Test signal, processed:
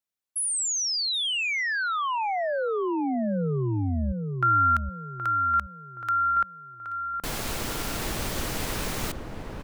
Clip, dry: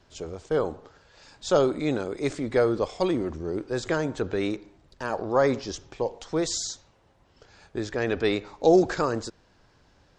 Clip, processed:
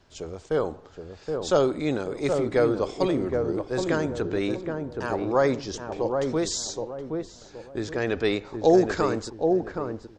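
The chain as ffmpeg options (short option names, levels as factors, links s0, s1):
-filter_complex "[0:a]asplit=2[s0][s1];[s1]adelay=772,lowpass=f=840:p=1,volume=0.668,asplit=2[s2][s3];[s3]adelay=772,lowpass=f=840:p=1,volume=0.38,asplit=2[s4][s5];[s5]adelay=772,lowpass=f=840:p=1,volume=0.38,asplit=2[s6][s7];[s7]adelay=772,lowpass=f=840:p=1,volume=0.38,asplit=2[s8][s9];[s9]adelay=772,lowpass=f=840:p=1,volume=0.38[s10];[s0][s2][s4][s6][s8][s10]amix=inputs=6:normalize=0"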